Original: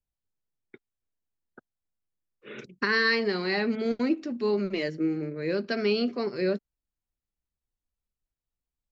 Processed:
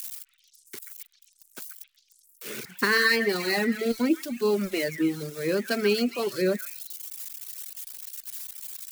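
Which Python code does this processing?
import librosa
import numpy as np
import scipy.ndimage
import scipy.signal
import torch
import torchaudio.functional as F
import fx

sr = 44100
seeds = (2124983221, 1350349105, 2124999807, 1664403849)

y = x + 0.5 * 10.0 ** (-28.5 / 20.0) * np.diff(np.sign(x), prepend=np.sign(x[:1]))
y = fx.echo_stepped(y, sr, ms=134, hz=1700.0, octaves=0.7, feedback_pct=70, wet_db=-4)
y = fx.dereverb_blind(y, sr, rt60_s=1.1)
y = F.gain(torch.from_numpy(y), 3.0).numpy()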